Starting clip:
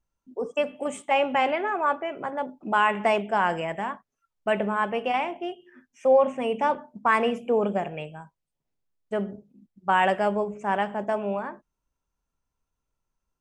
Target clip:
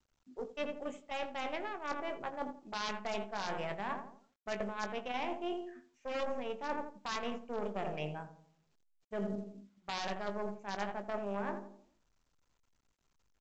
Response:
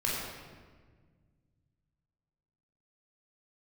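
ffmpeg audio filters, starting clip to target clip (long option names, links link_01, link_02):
-filter_complex "[0:a]aeval=exprs='0.376*(cos(1*acos(clip(val(0)/0.376,-1,1)))-cos(1*PI/2))+0.106*(cos(2*acos(clip(val(0)/0.376,-1,1)))-cos(2*PI/2))+0.075*(cos(3*acos(clip(val(0)/0.376,-1,1)))-cos(3*PI/2))+0.00596*(cos(4*acos(clip(val(0)/0.376,-1,1)))-cos(4*PI/2))+0.00668*(cos(7*acos(clip(val(0)/0.376,-1,1)))-cos(7*PI/2))':channel_layout=same,asplit=2[link_01][link_02];[link_02]adelay=85,lowpass=frequency=940:poles=1,volume=-10dB,asplit=2[link_03][link_04];[link_04]adelay=85,lowpass=frequency=940:poles=1,volume=0.5,asplit=2[link_05][link_06];[link_06]adelay=85,lowpass=frequency=940:poles=1,volume=0.5,asplit=2[link_07][link_08];[link_08]adelay=85,lowpass=frequency=940:poles=1,volume=0.5,asplit=2[link_09][link_10];[link_10]adelay=85,lowpass=frequency=940:poles=1,volume=0.5[link_11];[link_01][link_03][link_05][link_07][link_09][link_11]amix=inputs=6:normalize=0,dynaudnorm=framelen=290:gausssize=13:maxgain=9dB,aeval=exprs='0.266*(abs(mod(val(0)/0.266+3,4)-2)-1)':channel_layout=same,areverse,acompressor=threshold=-39dB:ratio=8,areverse,asplit=2[link_12][link_13];[link_13]adelay=20,volume=-10dB[link_14];[link_12][link_14]amix=inputs=2:normalize=0,volume=4dB" -ar 16000 -c:a pcm_mulaw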